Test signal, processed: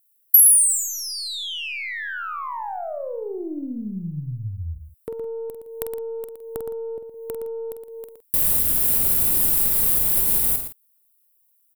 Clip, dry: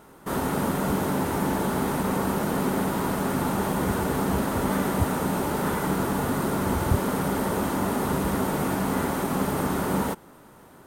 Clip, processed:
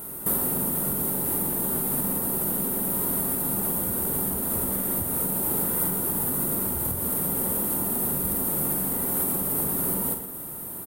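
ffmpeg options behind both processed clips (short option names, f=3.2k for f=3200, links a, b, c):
-filter_complex "[0:a]equalizer=f=1.4k:t=o:w=2.4:g=-6.5,asplit=2[a][b];[b]alimiter=limit=-20dB:level=0:latency=1,volume=-3dB[c];[a][c]amix=inputs=2:normalize=0,acompressor=threshold=-32dB:ratio=16,aeval=exprs='(tanh(10*val(0)+0.4)-tanh(0.4))/10':c=same,aexciter=amount=11.6:drive=2.6:freq=8.7k,asplit=2[d][e];[e]adelay=47,volume=-8dB[f];[d][f]amix=inputs=2:normalize=0,asplit=2[g][h];[h]adelay=116.6,volume=-8dB,highshelf=f=4k:g=-2.62[i];[g][i]amix=inputs=2:normalize=0,volume=4dB"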